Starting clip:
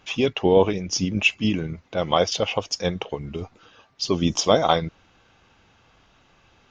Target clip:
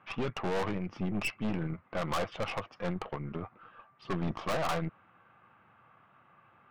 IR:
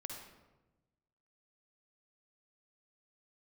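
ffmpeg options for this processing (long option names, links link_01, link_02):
-af "highpass=frequency=110:width=0.5412,highpass=frequency=110:width=1.3066,equalizer=frequency=280:width_type=q:width=4:gain=-6,equalizer=frequency=430:width_type=q:width=4:gain=-6,equalizer=frequency=1200:width_type=q:width=4:gain=9,lowpass=frequency=2200:width=0.5412,lowpass=frequency=2200:width=1.3066,aeval=exprs='(tanh(28.2*val(0)+0.7)-tanh(0.7))/28.2':channel_layout=same"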